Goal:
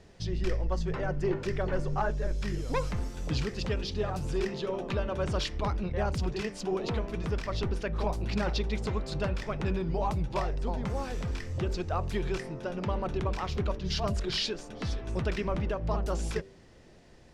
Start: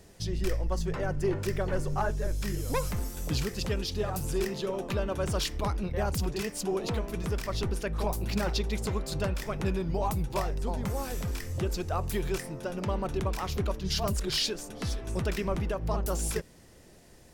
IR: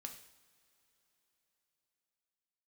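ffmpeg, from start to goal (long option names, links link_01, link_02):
-af "lowpass=4700,bandreject=frequency=97.14:width_type=h:width=4,bandreject=frequency=194.28:width_type=h:width=4,bandreject=frequency=291.42:width_type=h:width=4,bandreject=frequency=388.56:width_type=h:width=4,bandreject=frequency=485.7:width_type=h:width=4,bandreject=frequency=582.84:width_type=h:width=4,bandreject=frequency=679.98:width_type=h:width=4"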